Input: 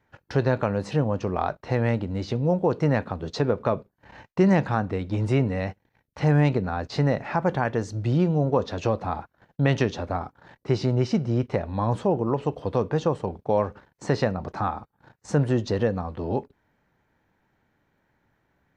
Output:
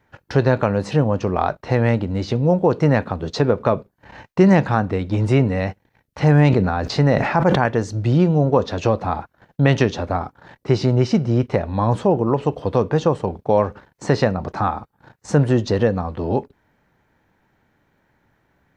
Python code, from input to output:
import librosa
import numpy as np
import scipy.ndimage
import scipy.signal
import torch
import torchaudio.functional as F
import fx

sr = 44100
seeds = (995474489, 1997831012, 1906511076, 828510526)

y = fx.sustainer(x, sr, db_per_s=45.0, at=(6.32, 7.66))
y = y * 10.0 ** (6.0 / 20.0)